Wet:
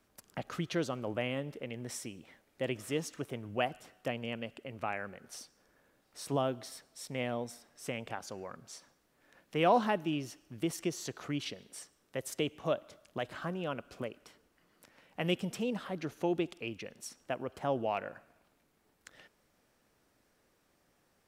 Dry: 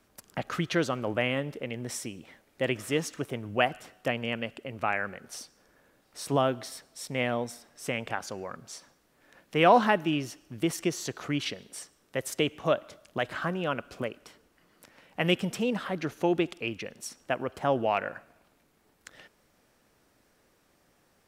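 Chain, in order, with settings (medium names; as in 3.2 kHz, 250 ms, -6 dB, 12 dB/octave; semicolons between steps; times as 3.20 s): dynamic bell 1.7 kHz, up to -5 dB, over -41 dBFS, Q 1; trim -5.5 dB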